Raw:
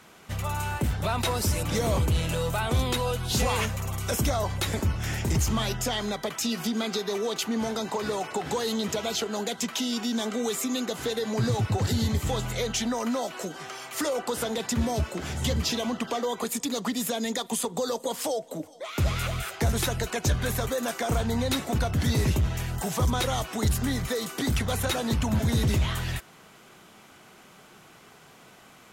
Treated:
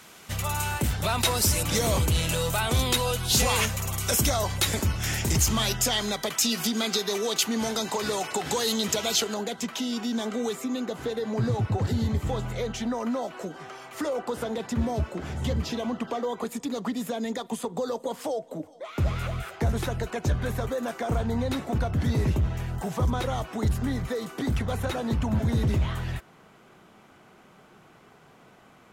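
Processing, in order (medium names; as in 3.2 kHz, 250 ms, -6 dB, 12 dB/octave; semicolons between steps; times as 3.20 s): treble shelf 2.5 kHz +8 dB, from 9.34 s -5 dB, from 10.53 s -11.5 dB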